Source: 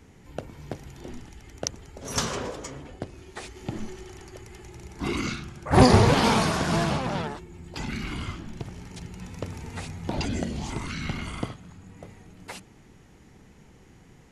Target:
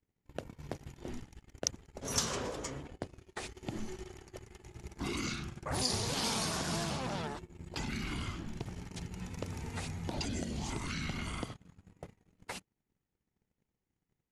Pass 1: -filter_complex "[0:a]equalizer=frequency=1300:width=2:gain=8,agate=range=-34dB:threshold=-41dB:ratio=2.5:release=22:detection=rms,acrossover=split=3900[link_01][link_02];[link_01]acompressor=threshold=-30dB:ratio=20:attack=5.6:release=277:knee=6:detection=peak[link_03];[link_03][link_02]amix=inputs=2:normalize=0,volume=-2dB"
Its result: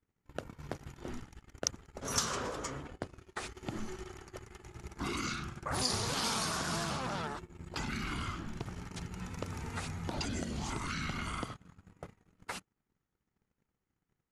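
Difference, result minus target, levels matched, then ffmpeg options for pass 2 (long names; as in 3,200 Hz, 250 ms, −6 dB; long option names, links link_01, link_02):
1,000 Hz band +2.5 dB
-filter_complex "[0:a]agate=range=-34dB:threshold=-41dB:ratio=2.5:release=22:detection=rms,acrossover=split=3900[link_01][link_02];[link_01]acompressor=threshold=-30dB:ratio=20:attack=5.6:release=277:knee=6:detection=peak[link_03];[link_03][link_02]amix=inputs=2:normalize=0,volume=-2dB"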